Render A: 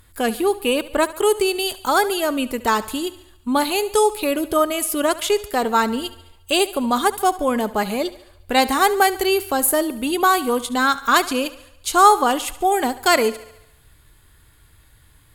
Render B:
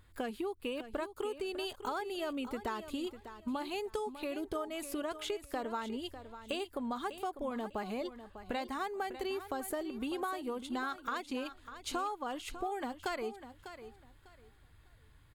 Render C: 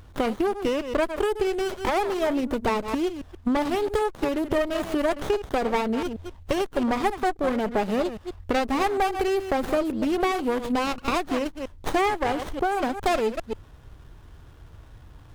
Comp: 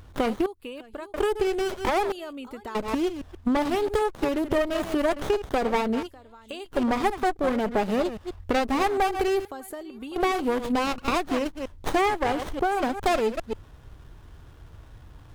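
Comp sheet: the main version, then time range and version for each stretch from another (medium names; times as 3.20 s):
C
0.46–1.14 s: from B
2.12–2.75 s: from B
6.03–6.69 s: from B, crossfade 0.10 s
9.45–10.16 s: from B
not used: A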